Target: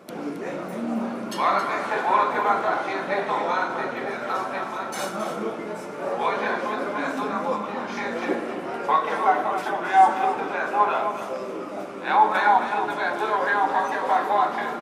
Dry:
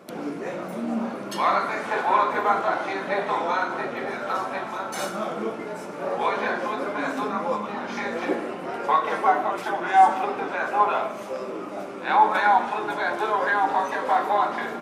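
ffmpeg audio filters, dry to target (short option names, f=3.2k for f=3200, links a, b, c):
-af "aecho=1:1:270:0.316"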